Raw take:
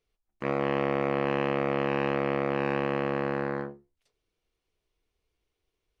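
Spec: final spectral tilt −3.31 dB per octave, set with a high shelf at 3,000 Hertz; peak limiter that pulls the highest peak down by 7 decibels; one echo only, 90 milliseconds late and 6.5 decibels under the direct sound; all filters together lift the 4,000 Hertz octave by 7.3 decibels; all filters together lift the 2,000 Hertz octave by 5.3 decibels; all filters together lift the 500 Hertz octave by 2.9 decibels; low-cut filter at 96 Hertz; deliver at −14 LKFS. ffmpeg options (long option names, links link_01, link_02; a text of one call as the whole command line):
ffmpeg -i in.wav -af "highpass=96,equalizer=frequency=500:width_type=o:gain=3,equalizer=frequency=2000:width_type=o:gain=3.5,highshelf=frequency=3000:gain=3,equalizer=frequency=4000:width_type=o:gain=7,alimiter=limit=-19dB:level=0:latency=1,aecho=1:1:90:0.473,volume=16dB" out.wav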